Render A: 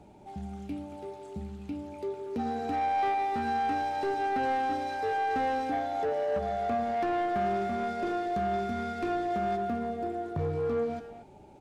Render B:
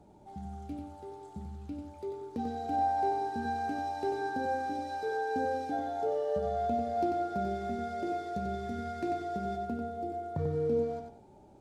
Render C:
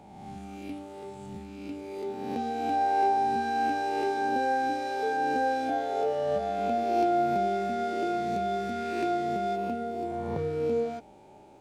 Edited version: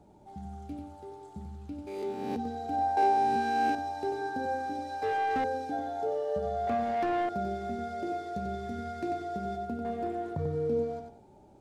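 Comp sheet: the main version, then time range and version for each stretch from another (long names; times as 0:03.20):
B
0:01.87–0:02.36: punch in from C
0:02.97–0:03.75: punch in from C
0:05.02–0:05.44: punch in from A
0:06.67–0:07.29: punch in from A
0:09.85–0:10.35: punch in from A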